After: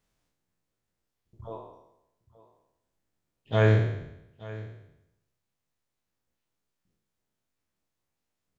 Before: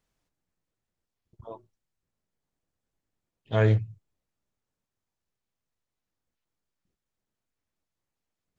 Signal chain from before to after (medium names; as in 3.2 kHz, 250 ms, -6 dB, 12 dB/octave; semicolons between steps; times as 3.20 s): spectral sustain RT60 0.86 s; delay 876 ms -18.5 dB